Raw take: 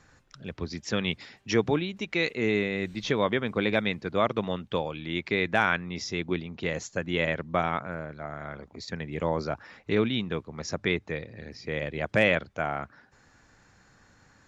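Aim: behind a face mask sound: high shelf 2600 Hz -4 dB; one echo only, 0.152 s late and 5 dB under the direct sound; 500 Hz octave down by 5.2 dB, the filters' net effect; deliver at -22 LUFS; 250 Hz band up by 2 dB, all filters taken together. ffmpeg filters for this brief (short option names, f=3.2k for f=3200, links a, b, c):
-af "equalizer=f=250:t=o:g=5,equalizer=f=500:t=o:g=-8,highshelf=f=2.6k:g=-4,aecho=1:1:152:0.562,volume=7dB"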